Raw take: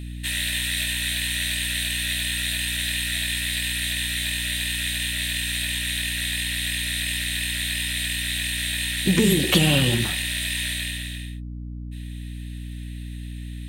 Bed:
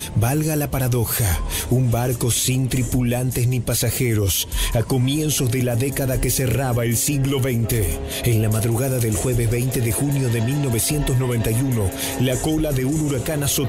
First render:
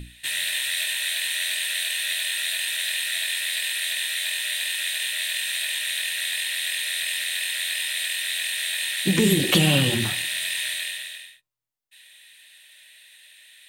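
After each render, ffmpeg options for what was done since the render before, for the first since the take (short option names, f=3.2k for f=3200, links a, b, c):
-af "bandreject=f=60:t=h:w=6,bandreject=f=120:t=h:w=6,bandreject=f=180:t=h:w=6,bandreject=f=240:t=h:w=6,bandreject=f=300:t=h:w=6,bandreject=f=360:t=h:w=6"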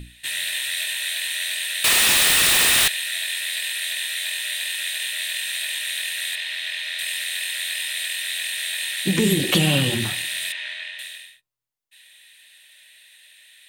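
-filter_complex "[0:a]asettb=1/sr,asplit=3[a][b][c];[a]atrim=end=1.844[d];[b]atrim=start=1.84:end=2.88,asetpts=PTS-STARTPTS,afade=t=in:d=0.004:c=qsin,afade=t=out:st=1.036:d=0.004:c=qsin,aeval=exprs='0.211*sin(PI/2*4.47*val(0)/0.211)':c=same[e];[c]atrim=start=2.876[f];[d][e]acrossfade=d=0.004:c1=hsin:c2=qsin[g];[g][f]acrossfade=d=0.004:c1=qsin:c2=hsin,asettb=1/sr,asplit=3[h][i][j];[h]atrim=end=6.354[k];[i]atrim=start=6.35:end=6.99,asetpts=PTS-STARTPTS,afade=t=in:d=0.004:c=qsin,afade=t=out:st=0.636:d=0.004:c=qsin,acrossover=split=5400[l][m];[m]acompressor=threshold=-46dB:ratio=4:attack=1:release=60[n];[l][n]amix=inputs=2:normalize=0[o];[j]atrim=start=6.986[p];[k][o]acrossfade=d=0.004:c1=hsin:c2=qsin[q];[q][p]acrossfade=d=0.004:c1=qsin:c2=hsin,asettb=1/sr,asplit=3[r][s][t];[r]atrim=end=10.524[u];[s]atrim=start=10.52:end=10.99,asetpts=PTS-STARTPTS,afade=t=in:d=0.004:c=qsin,afade=t=out:st=0.466:d=0.004:c=qsin,highpass=300,lowpass=2.9k[v];[t]atrim=start=10.986[w];[u][v]acrossfade=d=0.004:c1=hsin:c2=qsin[x];[x][w]acrossfade=d=0.004:c1=qsin:c2=hsin"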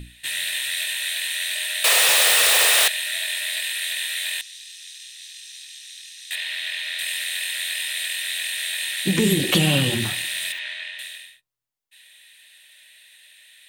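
-filter_complex "[0:a]asettb=1/sr,asplit=3[a][b][c];[a]atrim=end=1.554[d];[b]atrim=start=1.55:end=3.62,asetpts=PTS-STARTPTS,afade=t=in:d=0.004:c=qsin,afade=t=out:st=2.066:d=0.004:c=qsin,lowshelf=f=360:t=q:w=3:g=-13[e];[c]atrim=start=3.616[f];[d][e]acrossfade=d=0.004:c1=hsin:c2=qsin[g];[g][f]acrossfade=d=0.004:c1=qsin:c2=hsin,asettb=1/sr,asplit=3[h][i][j];[h]atrim=end=4.414[k];[i]atrim=start=4.41:end=6.31,asetpts=PTS-STARTPTS,afade=t=in:d=0.004:c=qsin,afade=t=out:st=1.896:d=0.004:c=qsin,bandpass=f=5.7k:t=q:w=4.1[l];[j]atrim=start=6.306[m];[k][l]acrossfade=d=0.004:c1=hsin:c2=qsin[n];[n][m]acrossfade=d=0.004:c1=qsin:c2=hsin,asettb=1/sr,asplit=3[o][p][q];[o]atrim=end=9.974[r];[p]atrim=start=9.97:end=10.59,asetpts=PTS-STARTPTS,afade=t=in:d=0.004:c=qsin,afade=t=out:st=0.616:d=0.004:c=qsin,acrusher=bits=8:dc=4:mix=0:aa=0.000001[s];[q]atrim=start=10.586[t];[r][s]acrossfade=d=0.004:c1=hsin:c2=qsin[u];[u][t]acrossfade=d=0.004:c1=qsin:c2=hsin"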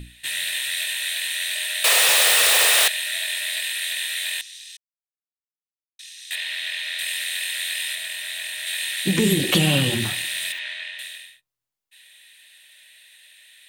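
-filter_complex "[0:a]asettb=1/sr,asplit=3[a][b][c];[a]atrim=end=7.954[d];[b]atrim=start=7.95:end=8.67,asetpts=PTS-STARTPTS,afade=t=in:d=0.004:c=qsin,afade=t=out:st=0.716:d=0.004:c=qsin,tiltshelf=f=970:g=4.5[e];[c]atrim=start=8.666[f];[d][e]acrossfade=d=0.004:c1=hsin:c2=qsin[g];[g][f]acrossfade=d=0.004:c1=qsin:c2=hsin,asplit=3[h][i][j];[h]atrim=end=4.77,asetpts=PTS-STARTPTS,afade=t=out:st=4.766:d=0.004:c=hsin[k];[i]atrim=start=4.77:end=5.99,asetpts=PTS-STARTPTS,volume=0[l];[j]atrim=start=5.99,asetpts=PTS-STARTPTS,afade=t=in:d=0.004:c=hsin[m];[k][l][m]concat=n=3:v=0:a=1"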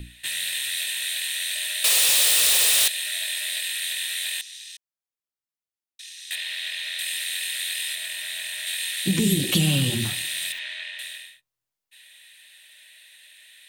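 -filter_complex "[0:a]acrossover=split=300|3000[a][b][c];[b]acompressor=threshold=-35dB:ratio=4[d];[a][d][c]amix=inputs=3:normalize=0"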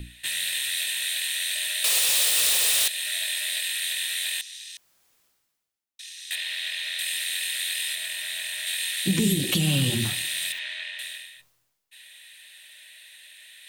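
-af "areverse,acompressor=mode=upward:threshold=-43dB:ratio=2.5,areverse,alimiter=limit=-12dB:level=0:latency=1:release=242"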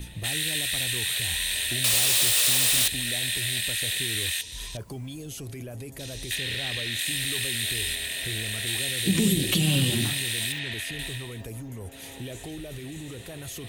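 -filter_complex "[1:a]volume=-18dB[a];[0:a][a]amix=inputs=2:normalize=0"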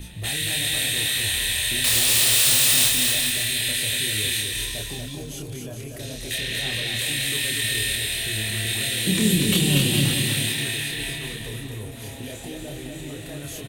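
-filter_complex "[0:a]asplit=2[a][b];[b]adelay=28,volume=-3dB[c];[a][c]amix=inputs=2:normalize=0,aecho=1:1:240|420|555|656.2|732.2:0.631|0.398|0.251|0.158|0.1"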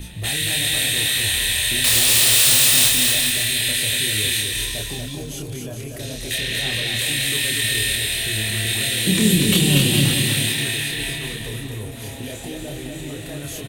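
-af "volume=3.5dB,alimiter=limit=-3dB:level=0:latency=1"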